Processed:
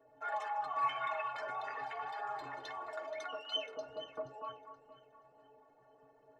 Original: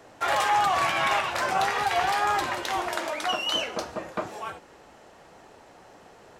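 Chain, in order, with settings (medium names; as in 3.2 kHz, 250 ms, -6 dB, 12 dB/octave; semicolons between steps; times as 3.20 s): resonances exaggerated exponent 2; inharmonic resonator 130 Hz, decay 0.27 s, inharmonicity 0.03; echo whose repeats swap between lows and highs 238 ms, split 1.3 kHz, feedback 56%, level -9 dB; trim -3.5 dB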